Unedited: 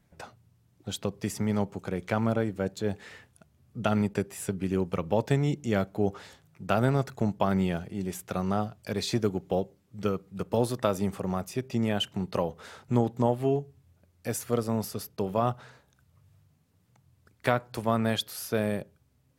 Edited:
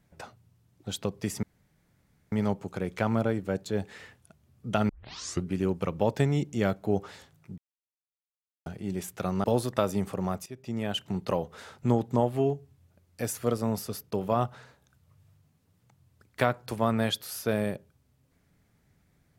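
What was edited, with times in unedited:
1.43 s: insert room tone 0.89 s
4.00 s: tape start 0.57 s
6.69–7.77 s: mute
8.55–10.50 s: delete
11.52–12.21 s: fade in, from -14 dB

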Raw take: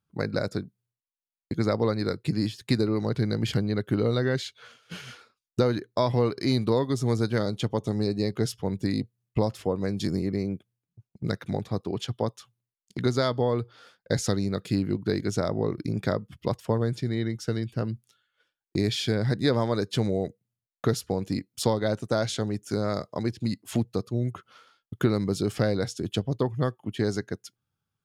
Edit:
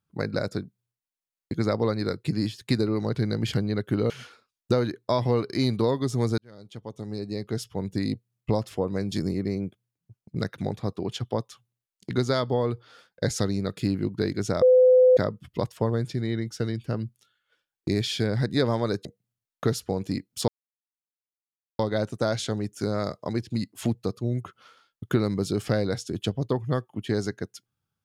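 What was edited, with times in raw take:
4.10–4.98 s: delete
7.26–8.99 s: fade in
15.50–16.05 s: bleep 508 Hz -12.5 dBFS
19.93–20.26 s: delete
21.69 s: insert silence 1.31 s

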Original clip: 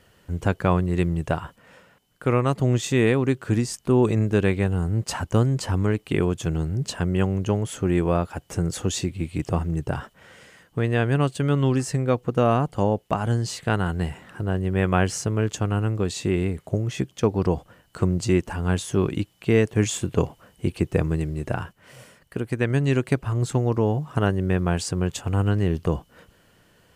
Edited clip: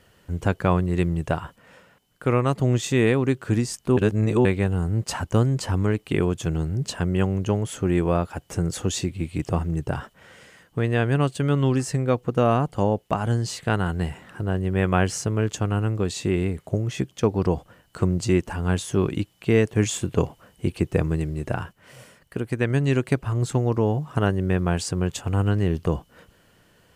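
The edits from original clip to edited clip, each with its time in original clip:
3.97–4.45 s: reverse

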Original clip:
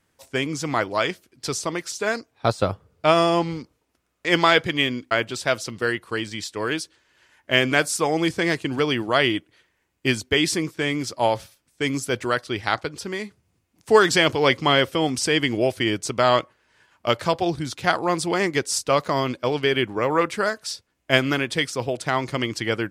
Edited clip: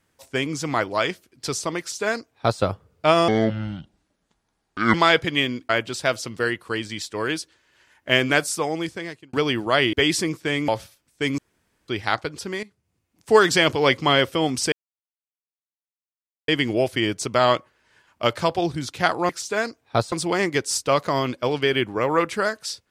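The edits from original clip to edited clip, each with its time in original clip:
1.79–2.62 s: copy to 18.13 s
3.28–4.36 s: speed 65%
7.78–8.75 s: fade out
9.35–10.27 s: delete
11.02–11.28 s: delete
11.98–12.48 s: room tone
13.23–13.93 s: fade in, from -13.5 dB
15.32 s: insert silence 1.76 s

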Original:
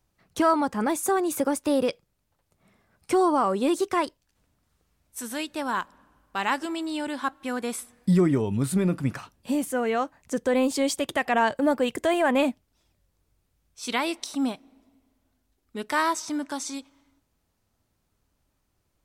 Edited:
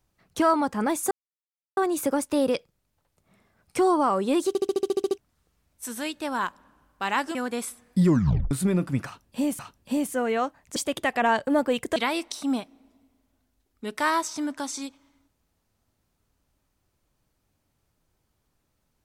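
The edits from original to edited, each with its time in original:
1.11 s: insert silence 0.66 s
3.82 s: stutter in place 0.07 s, 10 plays
6.69–7.46 s: delete
8.17 s: tape stop 0.45 s
9.17–9.70 s: loop, 2 plays
10.34–10.88 s: delete
12.08–13.88 s: delete

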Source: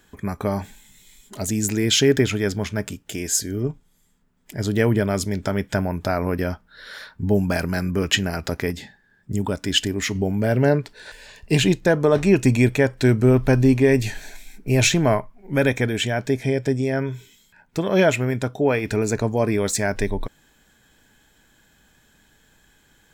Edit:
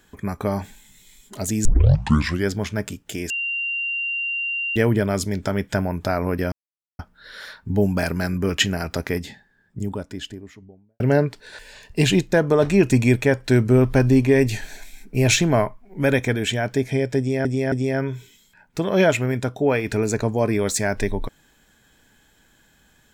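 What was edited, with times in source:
1.65 s: tape start 0.83 s
3.30–4.76 s: bleep 2.77 kHz -22.5 dBFS
6.52 s: insert silence 0.47 s
8.69–10.53 s: studio fade out
16.71–16.98 s: loop, 3 plays

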